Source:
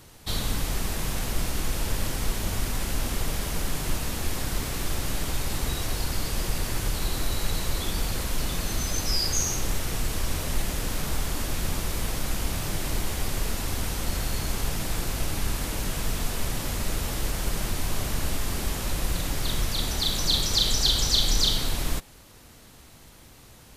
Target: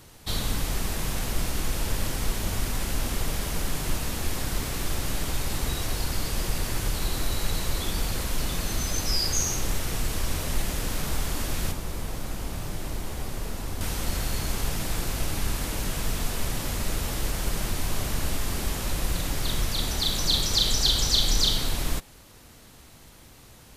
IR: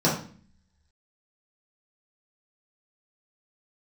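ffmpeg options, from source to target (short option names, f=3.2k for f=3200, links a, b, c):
-filter_complex "[0:a]asettb=1/sr,asplit=3[a][b][c];[a]atrim=end=11.714[d];[b]atrim=start=11.71:end=13.81,asetpts=PTS-STARTPTS,afade=t=in:d=0.004:c=qsin,afade=t=out:st=2.096:d=0.004:c=qsin,acrossover=split=99|1300[e][f][g];[e]acompressor=threshold=-28dB:ratio=4[h];[f]acompressor=threshold=-36dB:ratio=4[i];[g]acompressor=threshold=-42dB:ratio=4[j];[h][i][j]amix=inputs=3:normalize=0[k];[c]atrim=start=13.806[l];[d][k]acrossfade=d=0.004:c1=hsin:c2=qsin[m];[m][l]acrossfade=d=0.004:c1=qsin:c2=hsin"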